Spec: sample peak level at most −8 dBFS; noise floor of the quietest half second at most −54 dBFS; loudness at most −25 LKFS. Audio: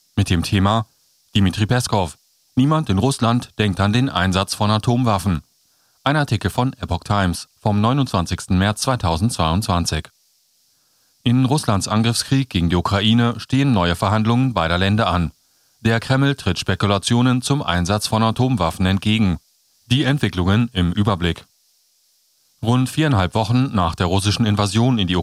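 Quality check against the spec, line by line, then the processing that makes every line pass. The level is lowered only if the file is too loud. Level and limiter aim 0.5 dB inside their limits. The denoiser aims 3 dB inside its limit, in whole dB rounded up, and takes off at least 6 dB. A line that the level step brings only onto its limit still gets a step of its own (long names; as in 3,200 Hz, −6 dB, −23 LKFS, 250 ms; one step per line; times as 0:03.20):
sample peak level −4.5 dBFS: out of spec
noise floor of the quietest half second −61 dBFS: in spec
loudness −18.5 LKFS: out of spec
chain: level −7 dB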